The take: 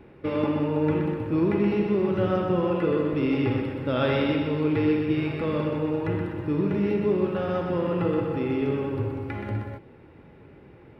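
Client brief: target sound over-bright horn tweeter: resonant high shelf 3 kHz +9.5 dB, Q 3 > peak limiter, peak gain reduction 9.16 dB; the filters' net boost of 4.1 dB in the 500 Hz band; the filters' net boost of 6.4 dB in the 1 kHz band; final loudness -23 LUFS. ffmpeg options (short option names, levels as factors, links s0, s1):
-af "equalizer=f=500:t=o:g=3.5,equalizer=f=1000:t=o:g=8.5,highshelf=f=3000:t=q:w=3:g=9.5,volume=1.41,alimiter=limit=0.2:level=0:latency=1"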